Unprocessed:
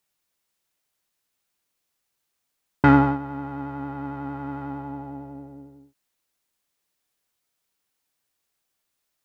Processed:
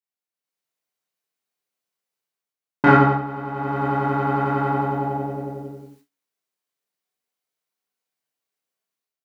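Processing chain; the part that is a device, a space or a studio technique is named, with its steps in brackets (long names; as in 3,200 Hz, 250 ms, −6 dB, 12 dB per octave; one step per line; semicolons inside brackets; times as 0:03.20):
far laptop microphone (convolution reverb RT60 0.35 s, pre-delay 22 ms, DRR −5 dB; high-pass filter 160 Hz 12 dB per octave; automatic gain control gain up to 10 dB)
noise gate with hold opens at −38 dBFS
level −1 dB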